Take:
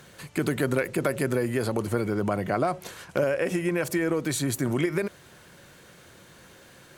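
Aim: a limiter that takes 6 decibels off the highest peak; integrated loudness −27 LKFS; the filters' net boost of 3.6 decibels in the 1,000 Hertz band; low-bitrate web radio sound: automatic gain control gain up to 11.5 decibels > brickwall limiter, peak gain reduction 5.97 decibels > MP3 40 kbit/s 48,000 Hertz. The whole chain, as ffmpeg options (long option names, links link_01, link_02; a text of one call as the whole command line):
ffmpeg -i in.wav -af "equalizer=frequency=1000:width_type=o:gain=5.5,alimiter=limit=-15.5dB:level=0:latency=1,dynaudnorm=maxgain=11.5dB,alimiter=limit=-21.5dB:level=0:latency=1,volume=5.5dB" -ar 48000 -c:a libmp3lame -b:a 40k out.mp3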